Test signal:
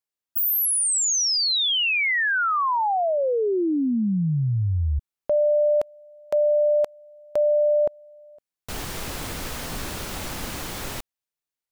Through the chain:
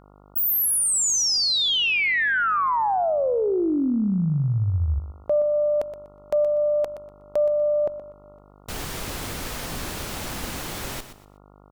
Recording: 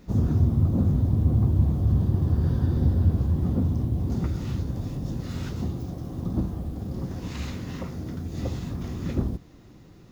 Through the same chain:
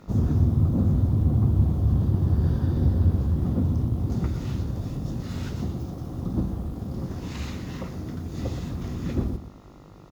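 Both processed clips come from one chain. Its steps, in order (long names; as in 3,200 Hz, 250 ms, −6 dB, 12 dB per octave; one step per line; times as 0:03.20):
repeating echo 122 ms, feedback 26%, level −11.5 dB
harmonic generator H 2 −24 dB, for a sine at −9.5 dBFS
hum with harmonics 50 Hz, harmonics 28, −52 dBFS −3 dB per octave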